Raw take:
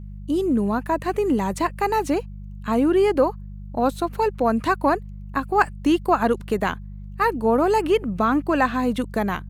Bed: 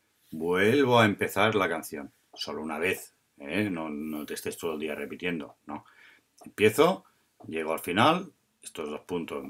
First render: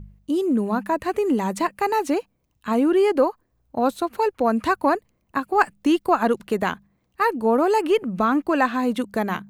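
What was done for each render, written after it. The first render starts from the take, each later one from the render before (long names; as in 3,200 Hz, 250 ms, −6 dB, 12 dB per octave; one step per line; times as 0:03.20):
hum removal 50 Hz, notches 4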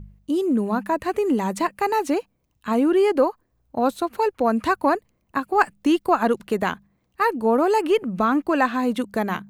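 no processing that can be heard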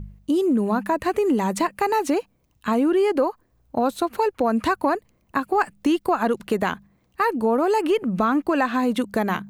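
in parallel at −2.5 dB: brickwall limiter −16 dBFS, peak gain reduction 11 dB
on the sum: downward compressor 2 to 1, threshold −20 dBFS, peak gain reduction 6 dB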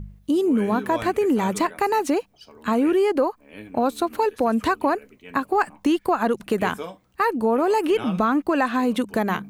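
mix in bed −12.5 dB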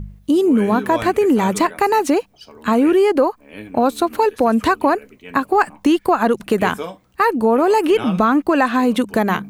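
level +5.5 dB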